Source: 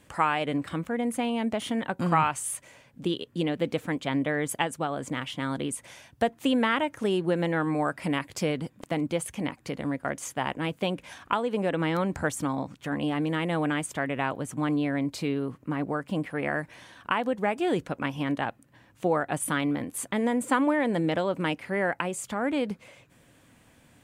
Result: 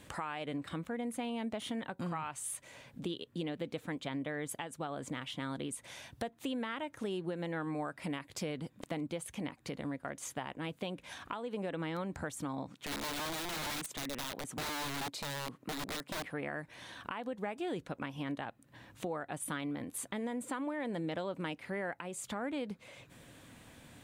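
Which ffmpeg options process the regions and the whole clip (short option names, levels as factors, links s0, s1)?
-filter_complex "[0:a]asettb=1/sr,asplit=3[s0][s1][s2];[s0]atrim=end=12.694[s3];[s1]atrim=start=12.69:end=16.24,asetpts=PTS-STARTPTS,afade=t=in:d=0.004:c=qsin,afade=t=out:st=3.546:d=0.004:c=qsin,highpass=160,aeval=exprs='(mod(21.1*val(0)+1,2)-1)/21.1':c=same[s4];[s2]atrim=start=16.236[s5];[s3][s4]acrossfade=d=0.004:c1=hsin:c2=qsin[s6];[s6][s5]acrossfade=d=0.004:c1=qsin:c2=hsin,equalizer=f=3800:t=o:w=0.28:g=5,alimiter=limit=0.133:level=0:latency=1:release=304,acompressor=threshold=0.00398:ratio=2,volume=1.33"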